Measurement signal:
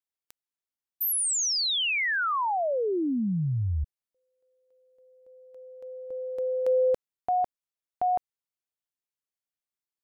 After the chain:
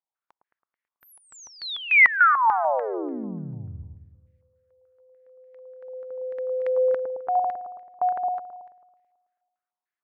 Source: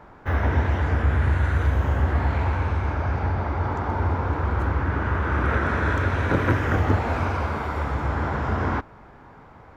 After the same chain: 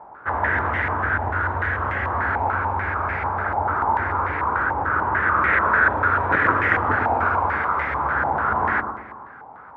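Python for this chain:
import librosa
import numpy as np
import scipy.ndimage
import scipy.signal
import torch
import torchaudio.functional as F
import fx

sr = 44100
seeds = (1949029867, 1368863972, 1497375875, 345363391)

y = fx.tilt_eq(x, sr, slope=3.5)
y = fx.echo_wet_lowpass(y, sr, ms=109, feedback_pct=56, hz=910.0, wet_db=-4)
y = fx.filter_held_lowpass(y, sr, hz=6.8, low_hz=840.0, high_hz=2000.0)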